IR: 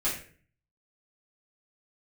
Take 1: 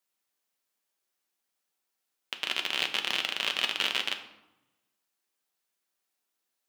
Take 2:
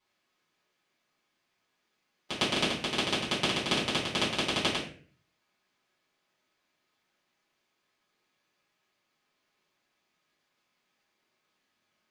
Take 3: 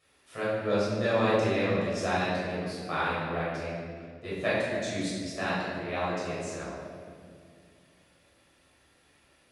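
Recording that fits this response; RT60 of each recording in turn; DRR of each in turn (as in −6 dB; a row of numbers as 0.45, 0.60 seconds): 2; 0.95, 0.45, 2.2 seconds; 4.5, −10.0, −9.5 decibels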